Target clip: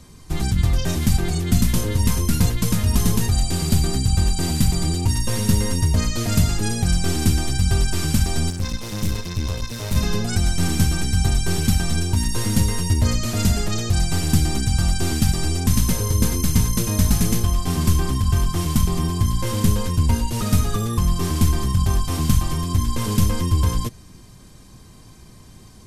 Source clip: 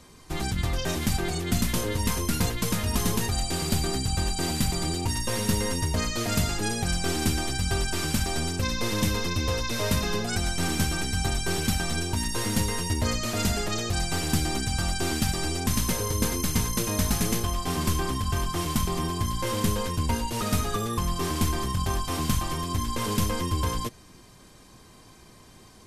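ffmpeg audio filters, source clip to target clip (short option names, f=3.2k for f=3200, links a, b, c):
-filter_complex "[0:a]asettb=1/sr,asplit=3[a][b][c];[a]atrim=end=8.504[d];[b]atrim=start=8.5:end=9.96,asetpts=PTS-STARTPTS,afade=t=in:d=0.004:c=qsin,afade=t=out:st=1.456:d=0.004:c=qsin,aeval=exprs='(tanh(20*val(0)+0.7)-tanh(0.7))/20':c=same[e];[c]atrim=start=9.956[f];[d][e]acrossfade=d=0.004:c1=hsin:c2=qsin[g];[g][f]acrossfade=d=0.004:c1=qsin:c2=hsin,bass=f=250:g=10,treble=f=4k:g=4"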